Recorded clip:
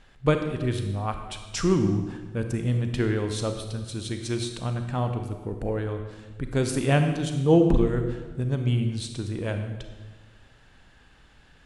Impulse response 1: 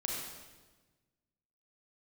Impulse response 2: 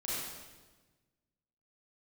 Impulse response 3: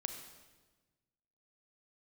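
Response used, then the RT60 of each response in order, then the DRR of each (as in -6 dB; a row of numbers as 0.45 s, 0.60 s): 3; 1.3 s, 1.3 s, 1.3 s; -2.5 dB, -9.0 dB, 6.0 dB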